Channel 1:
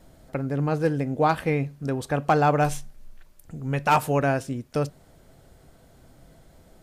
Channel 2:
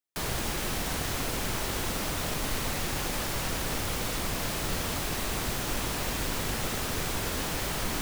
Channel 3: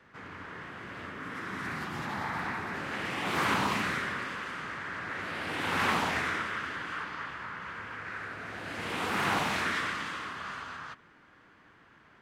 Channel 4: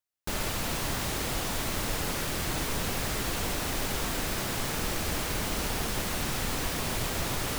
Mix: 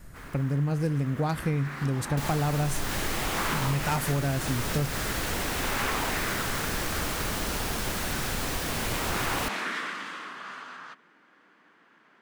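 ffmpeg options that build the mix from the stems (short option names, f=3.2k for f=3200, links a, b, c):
-filter_complex "[0:a]bass=f=250:g=13,treble=f=4k:g=12,volume=-6dB[a];[1:a]asoftclip=type=tanh:threshold=-33dB,volume=-18.5dB[b];[2:a]highpass=f=190:w=0.5412,highpass=f=190:w=1.3066,volume=-1dB[c];[3:a]adelay=1900,volume=0.5dB[d];[a][b][c][d]amix=inputs=4:normalize=0,acompressor=threshold=-23dB:ratio=6"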